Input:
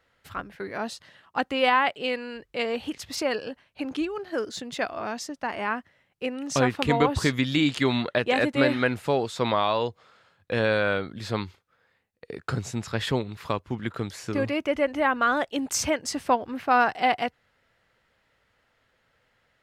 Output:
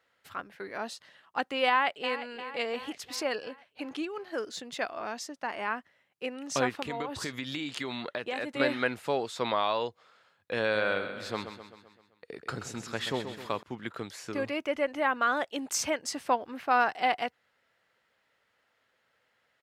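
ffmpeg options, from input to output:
ffmpeg -i in.wav -filter_complex "[0:a]asplit=2[link_01][link_02];[link_02]afade=type=in:start_time=1.68:duration=0.01,afade=type=out:start_time=2.22:duration=0.01,aecho=0:1:350|700|1050|1400|1750|2100|2450:0.237137|0.142282|0.0853695|0.0512217|0.030733|0.0184398|0.0110639[link_03];[link_01][link_03]amix=inputs=2:normalize=0,asettb=1/sr,asplit=3[link_04][link_05][link_06];[link_04]atrim=end=6.694[link_07];[link_05]atrim=start=6.69:end=8.6,asetpts=PTS-STARTPTS,afade=type=in:duration=0.004:curve=qsin,afade=type=out:start_time=1.906:duration=0.004:curve=qsin,acompressor=threshold=-25dB:ratio=5:attack=3.2:release=140:knee=1:detection=peak[link_08];[link_06]atrim=start=8.596[link_09];[link_07][link_08]acrossfade=duration=0.004:curve1=hsin:curve2=qsin[link_10];[link_10][link_09]acrossfade=duration=0.004:curve1=qsin:curve2=hsin,asettb=1/sr,asplit=3[link_11][link_12][link_13];[link_11]atrim=end=10.624[link_14];[link_12]atrim=start=10.62:end=13.63,asetpts=PTS-STARTPTS,afade=type=in:duration=0.004:curve=qsin,afade=type=out:start_time=3.006:duration=0.004:curve=qsin,aecho=1:1:130|260|390|520|650|780:0.335|0.184|0.101|0.0557|0.0307|0.0169,atrim=end_sample=132741[link_15];[link_13]atrim=start=13.626[link_16];[link_14][link_15]acrossfade=duration=0.004:curve1=hsin:curve2=qsin[link_17];[link_17][link_16]acrossfade=duration=0.004:curve1=qsin:curve2=hsin,highpass=frequency=340:poles=1,volume=-3.5dB" out.wav

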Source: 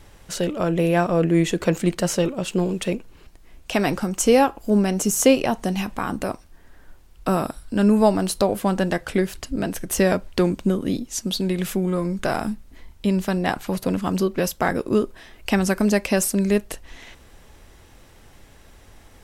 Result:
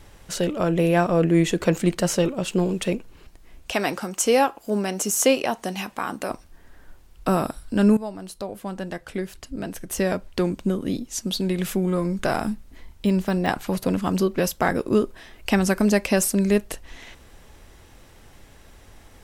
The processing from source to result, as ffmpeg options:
ffmpeg -i in.wav -filter_complex "[0:a]asettb=1/sr,asplit=3[link_01][link_02][link_03];[link_01]atrim=end=3.714[link_04];[link_02]atrim=start=3.71:end=6.31,asetpts=PTS-STARTPTS,afade=type=in:duration=0.004:curve=qsin,afade=type=out:start_time=2.596:duration=0.004:curve=qsin,highpass=frequency=440:poles=1[link_05];[link_03]atrim=start=6.306[link_06];[link_04][link_05]acrossfade=duration=0.004:curve1=hsin:curve2=qsin[link_07];[link_07][link_06]acrossfade=duration=0.004:curve1=qsin:curve2=hsin,asettb=1/sr,asplit=3[link_08][link_09][link_10];[link_08]atrim=end=13.064[link_11];[link_09]atrim=start=13.06:end=13.48,asetpts=PTS-STARTPTS,afade=type=in:duration=0.004:curve=qsin,afade=type=out:start_time=0.416:duration=0.004:curve=qsin,deesser=0.85[link_12];[link_10]atrim=start=13.476[link_13];[link_11][link_12]acrossfade=duration=0.004:curve1=hsin:curve2=qsin[link_14];[link_14][link_13]acrossfade=duration=0.004:curve1=qsin:curve2=hsin,asplit=2[link_15][link_16];[link_15]atrim=end=7.97,asetpts=PTS-STARTPTS,afade=type=out:start_time=7.966:duration=0.004:curve=hsin:silence=0.141254[link_17];[link_16]atrim=start=7.97,asetpts=PTS-STARTPTS,afade=type=in:duration=4:silence=0.141254[link_18];[link_17][link_18]concat=n=2:v=0:a=1" out.wav

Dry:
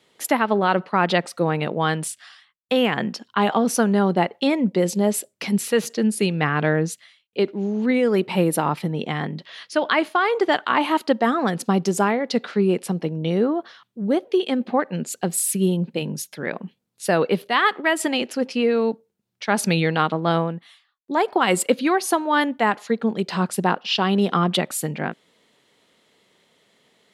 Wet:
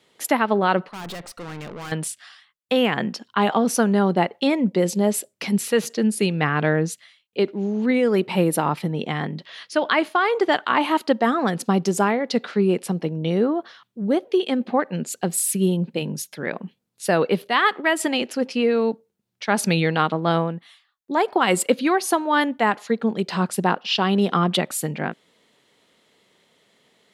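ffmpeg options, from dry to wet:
ffmpeg -i in.wav -filter_complex "[0:a]asettb=1/sr,asplit=3[link_01][link_02][link_03];[link_01]atrim=end=0.884[link_04];[link_02]atrim=start=0.88:end=1.92,asetpts=PTS-STARTPTS,afade=type=in:duration=0.004:curve=qsin,afade=type=out:start_time=1.036:duration=0.004:curve=qsin,aeval=exprs='(tanh(39.8*val(0)+0.55)-tanh(0.55))/39.8':channel_layout=same[link_05];[link_03]atrim=start=1.916[link_06];[link_04][link_05]acrossfade=duration=0.004:curve1=hsin:curve2=qsin[link_07];[link_07][link_06]acrossfade=duration=0.004:curve1=qsin:curve2=hsin" out.wav

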